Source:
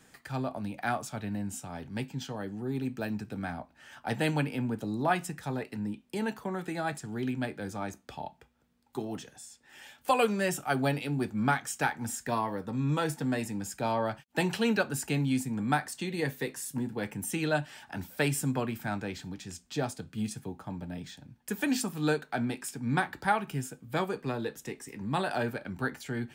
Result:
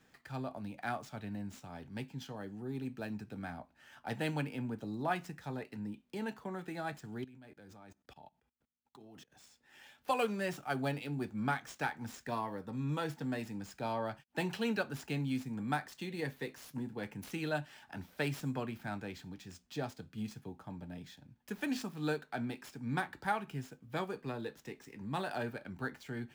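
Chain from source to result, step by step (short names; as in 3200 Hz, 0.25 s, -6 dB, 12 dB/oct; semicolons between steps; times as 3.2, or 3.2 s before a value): median filter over 5 samples; high shelf 3600 Hz +2 dB; 7.24–9.32 level quantiser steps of 24 dB; gain -7 dB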